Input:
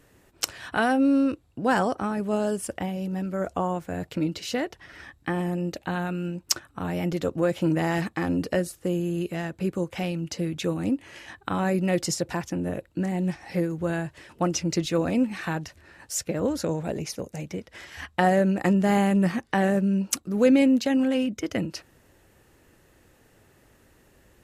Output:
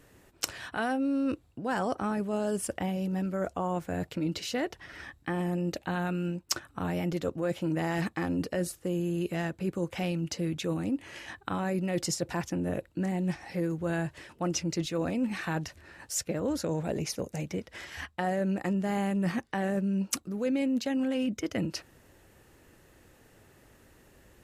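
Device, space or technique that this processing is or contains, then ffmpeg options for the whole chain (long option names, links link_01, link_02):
compression on the reversed sound: -af "areverse,acompressor=threshold=-27dB:ratio=5,areverse"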